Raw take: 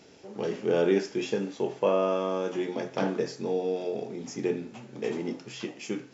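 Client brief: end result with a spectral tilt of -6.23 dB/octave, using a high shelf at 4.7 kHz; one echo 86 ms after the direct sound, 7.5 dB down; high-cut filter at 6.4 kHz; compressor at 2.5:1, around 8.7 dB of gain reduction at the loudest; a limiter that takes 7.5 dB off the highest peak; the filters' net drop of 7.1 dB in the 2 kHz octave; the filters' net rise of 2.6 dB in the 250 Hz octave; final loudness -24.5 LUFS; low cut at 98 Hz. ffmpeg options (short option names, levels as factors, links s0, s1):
-af "highpass=98,lowpass=6400,equalizer=f=250:t=o:g=4,equalizer=f=2000:t=o:g=-8.5,highshelf=f=4700:g=-7,acompressor=threshold=0.0316:ratio=2.5,alimiter=level_in=1.06:limit=0.0631:level=0:latency=1,volume=0.944,aecho=1:1:86:0.422,volume=3.35"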